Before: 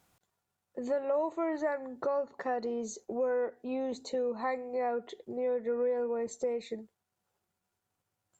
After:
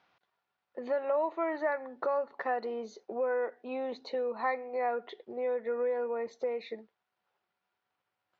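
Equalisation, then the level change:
high-pass filter 1,200 Hz 6 dB per octave
Butterworth low-pass 6,100 Hz
high-frequency loss of the air 280 metres
+8.5 dB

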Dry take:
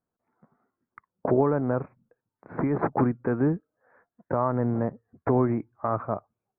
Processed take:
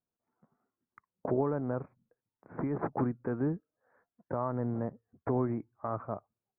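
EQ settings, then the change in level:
high-frequency loss of the air 320 metres
−7.0 dB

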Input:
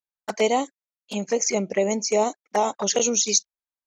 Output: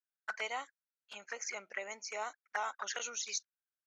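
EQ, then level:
resonant band-pass 1,500 Hz, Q 5.5
spectral tilt +3 dB per octave
+1.5 dB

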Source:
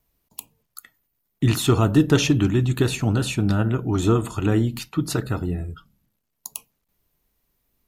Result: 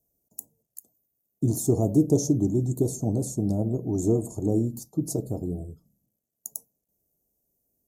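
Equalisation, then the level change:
high-pass filter 170 Hz 6 dB per octave
elliptic band-stop filter 660–6,300 Hz, stop band 60 dB
−1.0 dB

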